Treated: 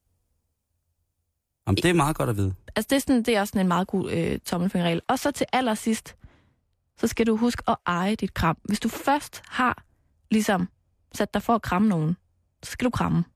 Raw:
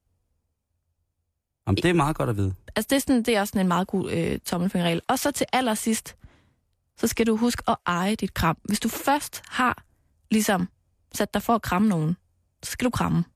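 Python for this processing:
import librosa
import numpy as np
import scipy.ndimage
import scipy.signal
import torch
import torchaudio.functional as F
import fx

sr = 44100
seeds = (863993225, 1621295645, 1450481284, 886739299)

y = fx.high_shelf(x, sr, hz=5300.0, db=fx.steps((0.0, 7.0), (2.42, -3.0), (4.78, -8.0)))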